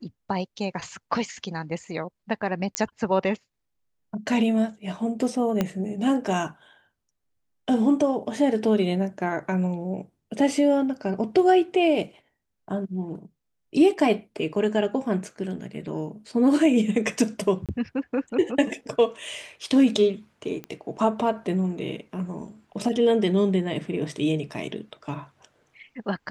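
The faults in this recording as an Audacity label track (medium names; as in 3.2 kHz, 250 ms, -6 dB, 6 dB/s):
2.750000	2.750000	pop -8 dBFS
5.610000	5.610000	pop -10 dBFS
17.660000	17.690000	dropout 27 ms
20.640000	20.640000	pop -21 dBFS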